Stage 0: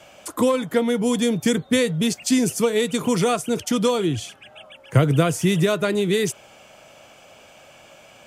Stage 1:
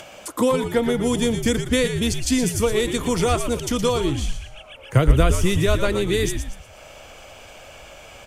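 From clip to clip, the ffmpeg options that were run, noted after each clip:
-filter_complex "[0:a]asplit=5[s0][s1][s2][s3][s4];[s1]adelay=117,afreqshift=-82,volume=0.376[s5];[s2]adelay=234,afreqshift=-164,volume=0.135[s6];[s3]adelay=351,afreqshift=-246,volume=0.049[s7];[s4]adelay=468,afreqshift=-328,volume=0.0176[s8];[s0][s5][s6][s7][s8]amix=inputs=5:normalize=0,asubboost=boost=7:cutoff=66,acompressor=mode=upward:threshold=0.0178:ratio=2.5"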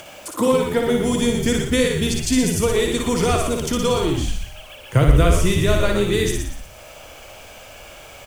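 -filter_complex "[0:a]acrusher=bits=7:mix=0:aa=0.000001,asplit=2[s0][s1];[s1]aecho=0:1:58.31|122.4:0.631|0.316[s2];[s0][s2]amix=inputs=2:normalize=0"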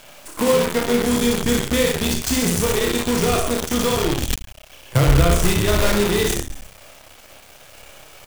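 -filter_complex "[0:a]asplit=2[s0][s1];[s1]adelay=29,volume=0.562[s2];[s0][s2]amix=inputs=2:normalize=0,acrusher=bits=4:dc=4:mix=0:aa=0.000001,volume=0.794"

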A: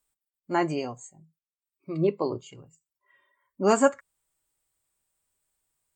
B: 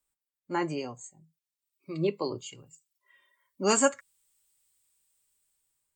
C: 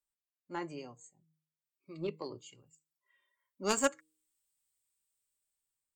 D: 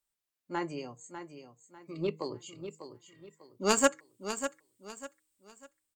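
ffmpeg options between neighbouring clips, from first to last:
-filter_complex "[0:a]bandreject=f=690:w=12,acrossover=split=180|710|2400[s0][s1][s2][s3];[s3]dynaudnorm=f=580:g=5:m=3.76[s4];[s0][s1][s2][s4]amix=inputs=4:normalize=0,volume=0.631"
-af "aeval=exprs='0.355*(cos(1*acos(clip(val(0)/0.355,-1,1)))-cos(1*PI/2))+0.0794*(cos(3*acos(clip(val(0)/0.355,-1,1)))-cos(3*PI/2))':c=same,bandreject=f=156.2:t=h:w=4,bandreject=f=312.4:t=h:w=4,bandreject=f=468.6:t=h:w=4,volume=0.891"
-af "aecho=1:1:597|1194|1791|2388:0.316|0.101|0.0324|0.0104,volume=1.78"

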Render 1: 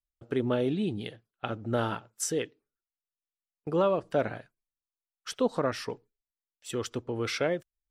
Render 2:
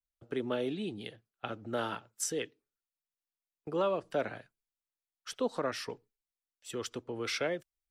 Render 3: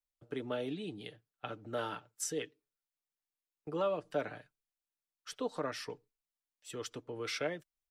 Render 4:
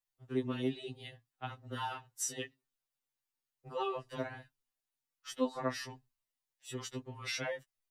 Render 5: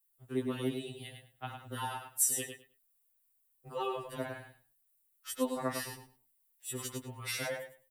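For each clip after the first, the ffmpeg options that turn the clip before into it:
-filter_complex "[0:a]acrossover=split=210|430|2600[s0][s1][s2][s3];[s0]acompressor=threshold=0.00631:ratio=6[s4];[s4][s1][s2][s3]amix=inputs=4:normalize=0,adynamicequalizer=threshold=0.0112:dfrequency=1500:dqfactor=0.7:tfrequency=1500:tqfactor=0.7:attack=5:release=100:ratio=0.375:range=2:mode=boostabove:tftype=highshelf,volume=0.562"
-af "aecho=1:1:6.7:0.4,volume=0.631"
-af "afftfilt=real='re*2.45*eq(mod(b,6),0)':imag='im*2.45*eq(mod(b,6),0)':win_size=2048:overlap=0.75,volume=1.5"
-filter_complex "[0:a]asplit=2[s0][s1];[s1]aecho=0:1:103|206|309:0.473|0.0852|0.0153[s2];[s0][s2]amix=inputs=2:normalize=0,aexciter=amount=8.1:drive=2.2:freq=8200"

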